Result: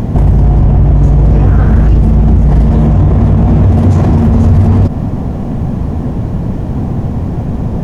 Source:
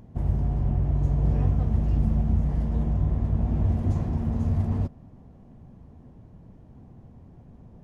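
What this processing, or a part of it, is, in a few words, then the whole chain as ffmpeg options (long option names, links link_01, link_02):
loud club master: -filter_complex "[0:a]asettb=1/sr,asplit=3[link_01][link_02][link_03];[link_01]atrim=end=2.704[link_04];[link_02]atrim=start=2.7:end=4.27,asetpts=PTS-STARTPTS,afade=type=in:duration=0.004:curve=qsin,afade=type=out:start_time=1.566:duration=0.004:curve=qsin,highpass=67[link_05];[link_03]atrim=start=4.266[link_06];[link_04][link_05]acrossfade=duration=0.004:curve1=hsin:curve2=qsin[link_07];[link_07][link_06]acrossfade=duration=0.004:curve1=qsin:curve2=hsin,acompressor=threshold=-25dB:ratio=2.5,asoftclip=type=hard:threshold=-23.5dB,alimiter=level_in=34.5dB:limit=-1dB:release=50:level=0:latency=1,asettb=1/sr,asplit=3[link_08][link_09][link_10];[link_08]atrim=end=1.474[link_11];[link_09]atrim=start=1.47:end=1.88,asetpts=PTS-STARTPTS,afade=type=in:duration=0.004:curve=qsin,afade=type=out:start_time=0.406:duration=0.004:curve=qsin,equalizer=frequency=1500:width=3.1:gain=13.5[link_12];[link_10]atrim=start=1.876[link_13];[link_11][link_12]acrossfade=duration=0.004:curve1=hsin:curve2=qsin[link_14];[link_14][link_13]acrossfade=duration=0.004:curve1=qsin:curve2=hsin,volume=-1dB"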